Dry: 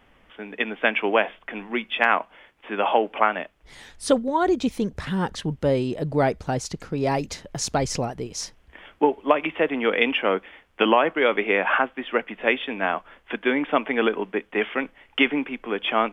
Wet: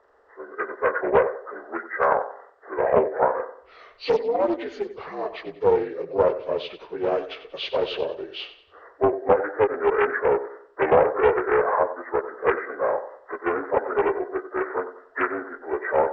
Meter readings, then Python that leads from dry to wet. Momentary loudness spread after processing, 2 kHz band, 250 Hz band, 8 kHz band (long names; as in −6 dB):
13 LU, −5.5 dB, −6.5 dB, below −25 dB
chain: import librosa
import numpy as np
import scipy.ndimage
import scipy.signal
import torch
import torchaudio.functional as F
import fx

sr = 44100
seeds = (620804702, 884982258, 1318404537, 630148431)

p1 = fx.partial_stretch(x, sr, pct=79)
p2 = fx.low_shelf_res(p1, sr, hz=300.0, db=-13.5, q=3.0)
p3 = p2 + fx.echo_feedback(p2, sr, ms=93, feedback_pct=36, wet_db=-12.5, dry=0)
p4 = fx.doppler_dist(p3, sr, depth_ms=0.36)
y = p4 * librosa.db_to_amplitude(-2.0)